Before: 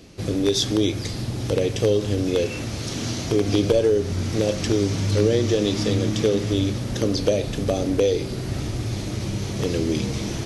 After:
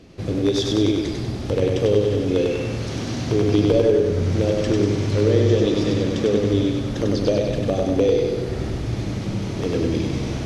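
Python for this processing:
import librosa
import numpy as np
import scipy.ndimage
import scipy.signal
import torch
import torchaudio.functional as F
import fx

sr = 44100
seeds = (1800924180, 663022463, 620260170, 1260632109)

p1 = fx.lowpass(x, sr, hz=2600.0, slope=6)
y = p1 + fx.echo_feedback(p1, sr, ms=97, feedback_pct=57, wet_db=-3, dry=0)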